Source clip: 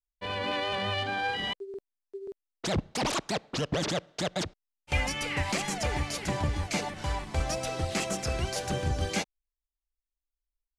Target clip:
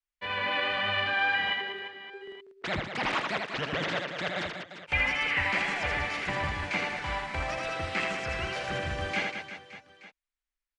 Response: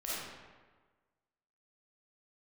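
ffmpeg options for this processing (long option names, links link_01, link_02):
-filter_complex "[0:a]equalizer=frequency=1900:width_type=o:width=2:gain=13,acrossover=split=3900[link_01][link_02];[link_02]acompressor=threshold=-46dB:ratio=4:attack=1:release=60[link_03];[link_01][link_03]amix=inputs=2:normalize=0,acrossover=split=120[link_04][link_05];[link_05]aecho=1:1:80|192|348.8|568.3|875.6:0.631|0.398|0.251|0.158|0.1[link_06];[link_04][link_06]amix=inputs=2:normalize=0,aresample=22050,aresample=44100,volume=-7dB"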